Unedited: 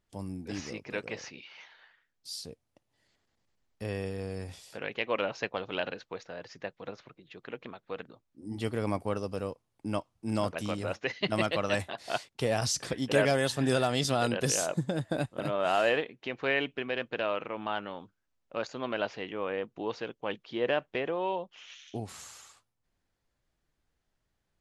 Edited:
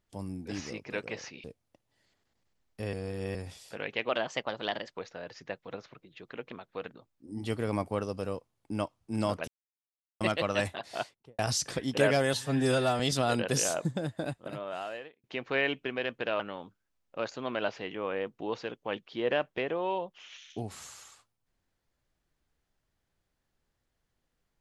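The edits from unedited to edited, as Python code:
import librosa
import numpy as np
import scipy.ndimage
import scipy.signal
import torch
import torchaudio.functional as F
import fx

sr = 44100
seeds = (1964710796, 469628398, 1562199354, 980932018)

y = fx.studio_fade_out(x, sr, start_s=12.0, length_s=0.53)
y = fx.edit(y, sr, fx.cut(start_s=1.44, length_s=1.02),
    fx.reverse_span(start_s=3.95, length_s=0.42),
    fx.speed_span(start_s=5.11, length_s=1.01, speed=1.14),
    fx.silence(start_s=10.62, length_s=0.73),
    fx.stretch_span(start_s=13.48, length_s=0.44, factor=1.5),
    fx.fade_out_span(start_s=14.67, length_s=1.49),
    fx.cut(start_s=17.32, length_s=0.45), tone=tone)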